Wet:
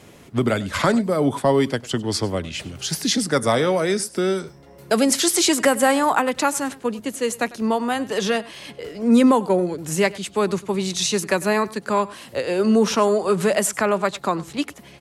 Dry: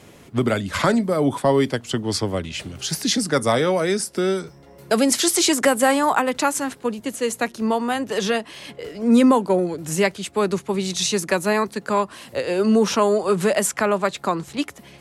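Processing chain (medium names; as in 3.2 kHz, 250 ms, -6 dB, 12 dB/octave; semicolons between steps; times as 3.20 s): delay 99 ms -20 dB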